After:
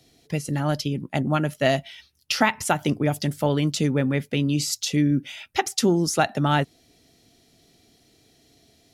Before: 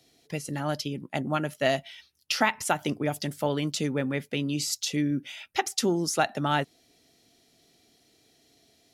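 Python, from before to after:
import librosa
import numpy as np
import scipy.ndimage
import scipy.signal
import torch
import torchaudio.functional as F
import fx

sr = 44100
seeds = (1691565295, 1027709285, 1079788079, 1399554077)

y = fx.low_shelf(x, sr, hz=180.0, db=9.5)
y = F.gain(torch.from_numpy(y), 3.0).numpy()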